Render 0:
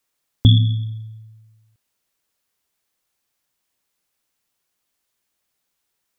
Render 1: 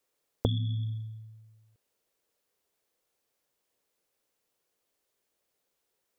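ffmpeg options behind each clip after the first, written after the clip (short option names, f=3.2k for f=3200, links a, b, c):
-af "acompressor=threshold=-22dB:ratio=6,equalizer=f=470:t=o:w=1.1:g=11.5,volume=-5.5dB"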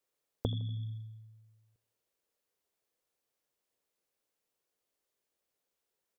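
-filter_complex "[0:a]asplit=2[a][b];[b]adelay=80,lowpass=f=2k:p=1,volume=-18dB,asplit=2[c][d];[d]adelay=80,lowpass=f=2k:p=1,volume=0.45,asplit=2[e][f];[f]adelay=80,lowpass=f=2k:p=1,volume=0.45,asplit=2[g][h];[h]adelay=80,lowpass=f=2k:p=1,volume=0.45[i];[a][c][e][g][i]amix=inputs=5:normalize=0,volume=-6dB"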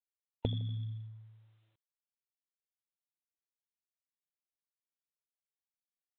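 -af "afftfilt=real='re*(1-between(b*sr/4096,920,2500))':imag='im*(1-between(b*sr/4096,920,2500))':win_size=4096:overlap=0.75" -ar 8000 -c:a adpcm_g726 -b:a 40k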